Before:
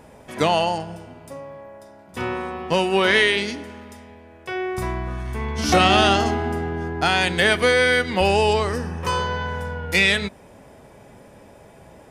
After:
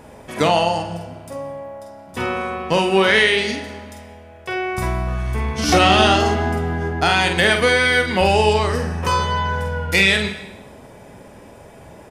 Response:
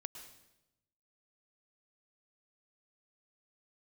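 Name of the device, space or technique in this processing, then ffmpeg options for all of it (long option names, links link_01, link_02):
compressed reverb return: -filter_complex "[0:a]asplit=2[link_01][link_02];[1:a]atrim=start_sample=2205[link_03];[link_02][link_03]afir=irnorm=-1:irlink=0,acompressor=threshold=-24dB:ratio=6,volume=1.5dB[link_04];[link_01][link_04]amix=inputs=2:normalize=0,asplit=2[link_05][link_06];[link_06]adelay=47,volume=-6dB[link_07];[link_05][link_07]amix=inputs=2:normalize=0,volume=-1dB"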